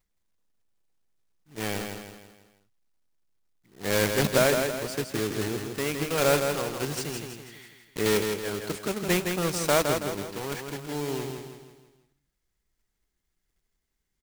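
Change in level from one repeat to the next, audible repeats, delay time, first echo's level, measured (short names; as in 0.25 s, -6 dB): -7.0 dB, 5, 0.163 s, -5.5 dB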